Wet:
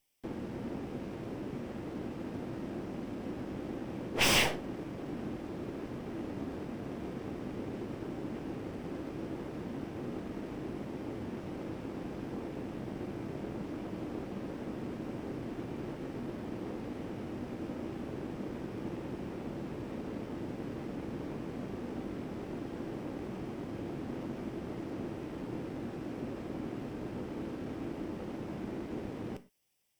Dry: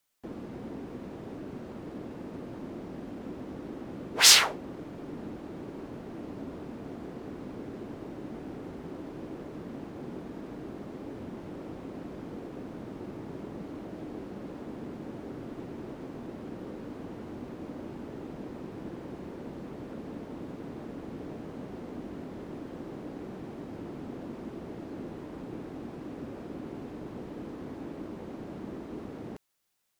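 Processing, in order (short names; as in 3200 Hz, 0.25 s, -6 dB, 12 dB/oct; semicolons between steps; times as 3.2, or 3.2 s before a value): minimum comb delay 0.36 ms; wavefolder -17.5 dBFS; non-linear reverb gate 0.14 s falling, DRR 10 dB; slew limiter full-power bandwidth 200 Hz; gain +1 dB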